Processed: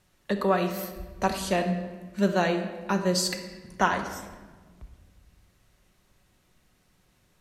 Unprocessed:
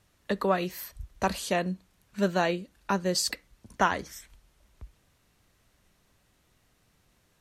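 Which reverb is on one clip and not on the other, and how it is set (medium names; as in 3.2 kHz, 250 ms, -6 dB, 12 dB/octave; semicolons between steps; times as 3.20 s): simulated room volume 1400 m³, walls mixed, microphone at 1 m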